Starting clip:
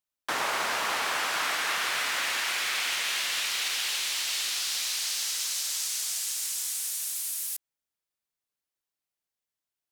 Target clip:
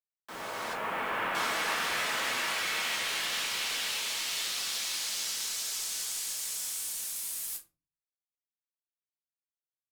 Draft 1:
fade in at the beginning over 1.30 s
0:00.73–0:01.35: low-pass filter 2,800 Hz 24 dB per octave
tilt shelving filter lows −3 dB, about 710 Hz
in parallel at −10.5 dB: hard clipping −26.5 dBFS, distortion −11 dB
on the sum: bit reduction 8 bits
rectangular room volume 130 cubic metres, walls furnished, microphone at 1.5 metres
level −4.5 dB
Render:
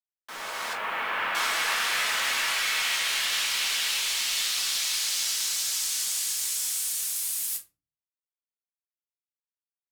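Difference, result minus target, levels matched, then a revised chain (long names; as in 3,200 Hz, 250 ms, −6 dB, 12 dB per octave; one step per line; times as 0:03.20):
1,000 Hz band −3.5 dB
fade in at the beginning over 1.30 s
0:00.73–0:01.35: low-pass filter 2,800 Hz 24 dB per octave
tilt shelving filter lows +4 dB, about 710 Hz
in parallel at −10.5 dB: hard clipping −26.5 dBFS, distortion −21 dB
on the sum: bit reduction 8 bits
rectangular room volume 130 cubic metres, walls furnished, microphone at 1.5 metres
level −4.5 dB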